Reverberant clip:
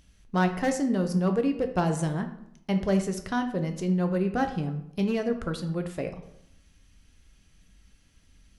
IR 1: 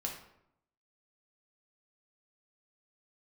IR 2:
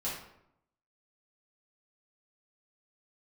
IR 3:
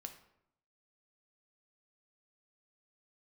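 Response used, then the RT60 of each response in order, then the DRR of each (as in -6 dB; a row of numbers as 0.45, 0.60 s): 3; 0.75, 0.75, 0.75 s; -0.5, -8.5, 5.5 dB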